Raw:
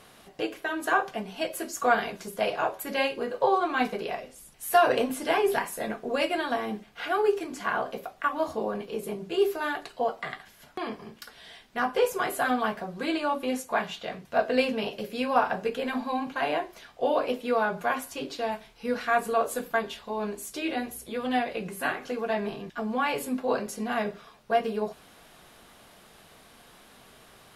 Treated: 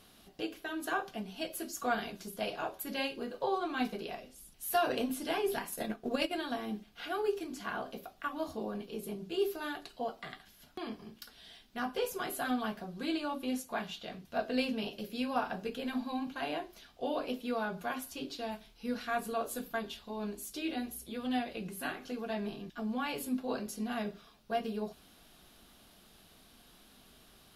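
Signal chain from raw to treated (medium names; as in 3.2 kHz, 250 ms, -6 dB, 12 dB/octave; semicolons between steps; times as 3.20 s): 5.67–6.34 s: transient shaper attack +7 dB, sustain -6 dB; graphic EQ 125/500/1000/2000/8000 Hz -7/-9/-8/-9/-7 dB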